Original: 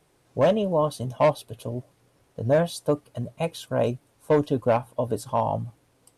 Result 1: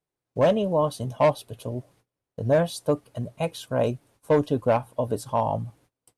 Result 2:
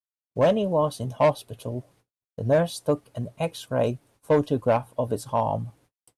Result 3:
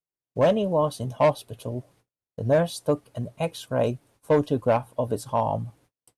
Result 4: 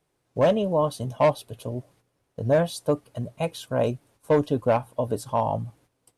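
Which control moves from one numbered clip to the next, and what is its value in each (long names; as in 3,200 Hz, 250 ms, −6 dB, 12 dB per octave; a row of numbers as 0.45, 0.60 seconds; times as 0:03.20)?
noise gate, range: −24, −58, −38, −10 decibels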